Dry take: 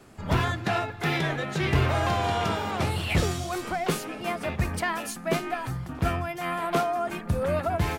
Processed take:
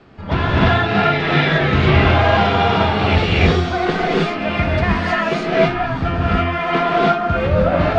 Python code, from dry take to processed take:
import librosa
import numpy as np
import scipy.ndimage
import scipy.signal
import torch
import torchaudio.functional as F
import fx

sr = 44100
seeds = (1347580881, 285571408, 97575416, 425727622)

y = scipy.signal.sosfilt(scipy.signal.butter(4, 4300.0, 'lowpass', fs=sr, output='sos'), x)
y = fx.rev_gated(y, sr, seeds[0], gate_ms=340, shape='rising', drr_db=-6.5)
y = F.gain(torch.from_numpy(y), 4.5).numpy()